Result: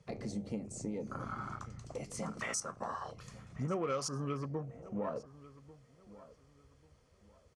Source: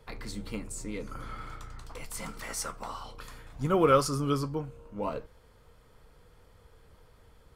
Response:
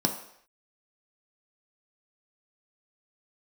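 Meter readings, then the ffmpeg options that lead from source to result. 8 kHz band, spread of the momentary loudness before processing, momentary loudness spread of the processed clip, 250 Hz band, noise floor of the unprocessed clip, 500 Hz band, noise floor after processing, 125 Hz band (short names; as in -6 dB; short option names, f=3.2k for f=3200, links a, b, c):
-3.0 dB, 21 LU, 20 LU, -6.0 dB, -60 dBFS, -9.0 dB, -67 dBFS, -5.5 dB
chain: -filter_complex "[0:a]afwtdn=0.00891,asplit=2[a][b];[b]asoftclip=type=tanh:threshold=-22.5dB,volume=-5dB[c];[a][c]amix=inputs=2:normalize=0,highpass=160,equalizer=f=300:t=q:w=4:g=-7,equalizer=f=450:t=q:w=4:g=-4,equalizer=f=910:t=q:w=4:g=-7,equalizer=f=1.5k:t=q:w=4:g=-7,equalizer=f=3.6k:t=q:w=4:g=-5,equalizer=f=6.1k:t=q:w=4:g=8,lowpass=f=9.5k:w=0.5412,lowpass=f=9.5k:w=1.3066,acompressor=threshold=-43dB:ratio=4,asplit=2[d][e];[e]adelay=1143,lowpass=f=3k:p=1,volume=-18dB,asplit=2[f][g];[g]adelay=1143,lowpass=f=3k:p=1,volume=0.29,asplit=2[h][i];[i]adelay=1143,lowpass=f=3k:p=1,volume=0.29[j];[d][f][h][j]amix=inputs=4:normalize=0,volume=6.5dB"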